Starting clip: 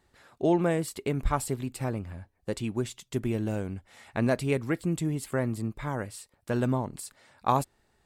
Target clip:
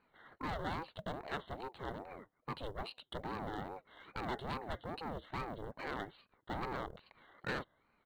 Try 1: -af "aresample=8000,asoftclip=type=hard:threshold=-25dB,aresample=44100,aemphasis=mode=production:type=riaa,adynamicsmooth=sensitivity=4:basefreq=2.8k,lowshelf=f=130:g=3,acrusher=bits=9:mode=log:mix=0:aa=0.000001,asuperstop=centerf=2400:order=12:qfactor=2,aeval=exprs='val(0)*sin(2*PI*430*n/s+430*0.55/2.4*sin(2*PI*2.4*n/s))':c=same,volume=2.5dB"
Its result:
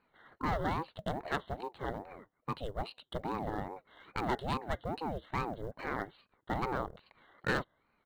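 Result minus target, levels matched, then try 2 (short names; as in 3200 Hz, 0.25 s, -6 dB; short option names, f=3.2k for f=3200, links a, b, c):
hard clip: distortion -5 dB
-af "aresample=8000,asoftclip=type=hard:threshold=-33.5dB,aresample=44100,aemphasis=mode=production:type=riaa,adynamicsmooth=sensitivity=4:basefreq=2.8k,lowshelf=f=130:g=3,acrusher=bits=9:mode=log:mix=0:aa=0.000001,asuperstop=centerf=2400:order=12:qfactor=2,aeval=exprs='val(0)*sin(2*PI*430*n/s+430*0.55/2.4*sin(2*PI*2.4*n/s))':c=same,volume=2.5dB"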